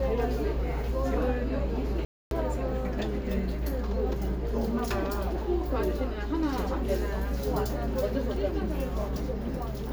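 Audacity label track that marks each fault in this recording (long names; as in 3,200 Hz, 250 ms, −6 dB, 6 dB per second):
2.050000	2.310000	drop-out 262 ms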